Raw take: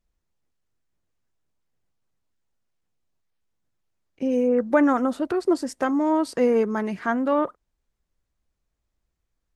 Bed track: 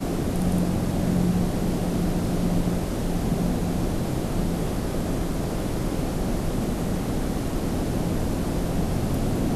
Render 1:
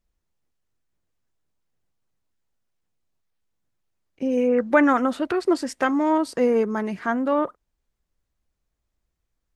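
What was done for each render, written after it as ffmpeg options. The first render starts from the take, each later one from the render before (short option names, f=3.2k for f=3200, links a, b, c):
-filter_complex "[0:a]asettb=1/sr,asplit=3[a][b][c];[a]atrim=end=4.374[d];[b]atrim=start=4.37:end=6.18,asetpts=PTS-STARTPTS,afade=t=in:d=0.004:c=qsin,afade=t=out:st=1.806:d=0.004:c=qsin,equalizer=f=2.4k:t=o:w=1.9:g=8[e];[c]atrim=start=6.176[f];[d][e]acrossfade=d=0.004:c1=hsin:c2=qsin[g];[g][f]acrossfade=d=0.004:c1=qsin:c2=hsin"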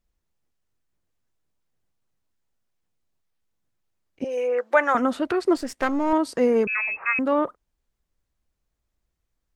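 -filter_complex "[0:a]asettb=1/sr,asplit=3[a][b][c];[a]atrim=end=4.244[d];[b]atrim=start=4.24:end=4.95,asetpts=PTS-STARTPTS,afade=t=in:d=0.004:c=qsin,afade=t=out:st=0.706:d=0.004:c=qsin,highpass=f=470:w=0.5412,highpass=f=470:w=1.3066[e];[c]atrim=start=4.946[f];[d][e]acrossfade=d=0.004:c1=hsin:c2=qsin[g];[g][f]acrossfade=d=0.004:c1=qsin:c2=hsin,asettb=1/sr,asplit=3[h][i][j];[h]atrim=end=5.564[k];[i]atrim=start=5.56:end=6.13,asetpts=PTS-STARTPTS,afade=t=in:d=0.004:c=qsin,afade=t=out:st=0.566:d=0.004:c=qsin,aeval=exprs='if(lt(val(0),0),0.447*val(0),val(0))':c=same[l];[j]atrim=start=6.126[m];[k][l]acrossfade=d=0.004:c1=hsin:c2=qsin[n];[n][m]acrossfade=d=0.004:c1=qsin:c2=hsin,asettb=1/sr,asplit=3[o][p][q];[o]atrim=end=6.674[r];[p]atrim=start=6.67:end=7.19,asetpts=PTS-STARTPTS,afade=t=in:d=0.004:c=qsin,afade=t=out:st=0.516:d=0.004:c=qsin,lowpass=f=2.4k:t=q:w=0.5098,lowpass=f=2.4k:t=q:w=0.6013,lowpass=f=2.4k:t=q:w=0.9,lowpass=f=2.4k:t=q:w=2.563,afreqshift=-2800[s];[q]atrim=start=7.186[t];[r][s]acrossfade=d=0.004:c1=hsin:c2=qsin[u];[u][t]acrossfade=d=0.004:c1=qsin:c2=hsin"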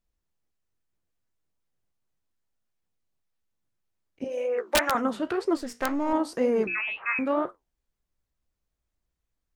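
-af "flanger=delay=9.6:depth=9.4:regen=-66:speed=2:shape=sinusoidal,aeval=exprs='(mod(4.73*val(0)+1,2)-1)/4.73':c=same"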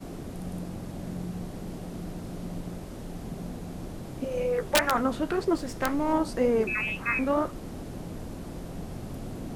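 -filter_complex "[1:a]volume=-13dB[a];[0:a][a]amix=inputs=2:normalize=0"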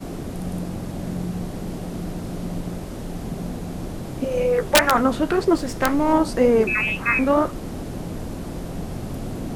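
-af "volume=7.5dB"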